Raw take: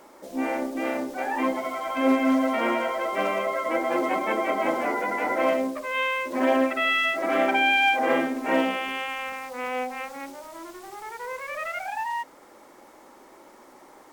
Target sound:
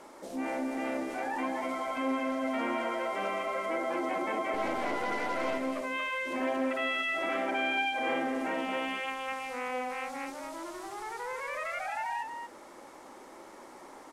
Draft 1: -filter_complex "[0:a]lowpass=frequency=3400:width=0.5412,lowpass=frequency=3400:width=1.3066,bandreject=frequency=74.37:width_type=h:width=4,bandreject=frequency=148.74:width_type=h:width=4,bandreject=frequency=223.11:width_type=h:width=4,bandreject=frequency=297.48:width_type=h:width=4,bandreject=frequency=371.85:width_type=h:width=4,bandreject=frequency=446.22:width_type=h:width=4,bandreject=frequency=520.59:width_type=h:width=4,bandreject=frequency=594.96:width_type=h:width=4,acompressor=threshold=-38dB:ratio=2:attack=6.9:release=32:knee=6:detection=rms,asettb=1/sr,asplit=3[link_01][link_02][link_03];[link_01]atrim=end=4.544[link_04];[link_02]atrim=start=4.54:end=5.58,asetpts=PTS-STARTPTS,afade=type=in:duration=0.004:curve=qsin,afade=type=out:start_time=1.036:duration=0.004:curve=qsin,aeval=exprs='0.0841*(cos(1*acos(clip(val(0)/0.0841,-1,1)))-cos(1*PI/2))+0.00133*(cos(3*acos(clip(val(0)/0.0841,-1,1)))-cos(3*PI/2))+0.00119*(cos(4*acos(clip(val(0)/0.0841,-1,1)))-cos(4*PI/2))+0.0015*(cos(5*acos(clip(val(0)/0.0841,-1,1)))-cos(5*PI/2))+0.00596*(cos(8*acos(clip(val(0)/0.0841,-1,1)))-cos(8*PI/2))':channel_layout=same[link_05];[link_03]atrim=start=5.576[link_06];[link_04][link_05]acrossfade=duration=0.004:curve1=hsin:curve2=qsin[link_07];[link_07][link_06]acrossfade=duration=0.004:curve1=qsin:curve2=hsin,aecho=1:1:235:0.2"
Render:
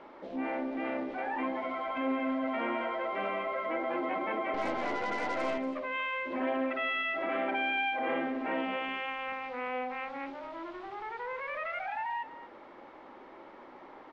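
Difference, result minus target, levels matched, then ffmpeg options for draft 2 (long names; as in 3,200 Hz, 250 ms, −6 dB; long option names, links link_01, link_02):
8,000 Hz band −14.0 dB; echo-to-direct −8 dB
-filter_complex "[0:a]lowpass=frequency=12000:width=0.5412,lowpass=frequency=12000:width=1.3066,bandreject=frequency=74.37:width_type=h:width=4,bandreject=frequency=148.74:width_type=h:width=4,bandreject=frequency=223.11:width_type=h:width=4,bandreject=frequency=297.48:width_type=h:width=4,bandreject=frequency=371.85:width_type=h:width=4,bandreject=frequency=446.22:width_type=h:width=4,bandreject=frequency=520.59:width_type=h:width=4,bandreject=frequency=594.96:width_type=h:width=4,acompressor=threshold=-38dB:ratio=2:attack=6.9:release=32:knee=6:detection=rms,asettb=1/sr,asplit=3[link_01][link_02][link_03];[link_01]atrim=end=4.544[link_04];[link_02]atrim=start=4.54:end=5.58,asetpts=PTS-STARTPTS,afade=type=in:duration=0.004:curve=qsin,afade=type=out:start_time=1.036:duration=0.004:curve=qsin,aeval=exprs='0.0841*(cos(1*acos(clip(val(0)/0.0841,-1,1)))-cos(1*PI/2))+0.00133*(cos(3*acos(clip(val(0)/0.0841,-1,1)))-cos(3*PI/2))+0.00119*(cos(4*acos(clip(val(0)/0.0841,-1,1)))-cos(4*PI/2))+0.0015*(cos(5*acos(clip(val(0)/0.0841,-1,1)))-cos(5*PI/2))+0.00596*(cos(8*acos(clip(val(0)/0.0841,-1,1)))-cos(8*PI/2))':channel_layout=same[link_05];[link_03]atrim=start=5.576[link_06];[link_04][link_05]acrossfade=duration=0.004:curve1=hsin:curve2=qsin[link_07];[link_07][link_06]acrossfade=duration=0.004:curve1=qsin:curve2=hsin,aecho=1:1:235:0.501"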